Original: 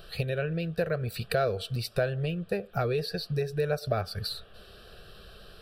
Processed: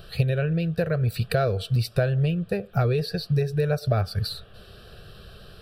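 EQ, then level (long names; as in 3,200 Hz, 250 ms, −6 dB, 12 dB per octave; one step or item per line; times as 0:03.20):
parametric band 110 Hz +8.5 dB 1.6 octaves
+2.0 dB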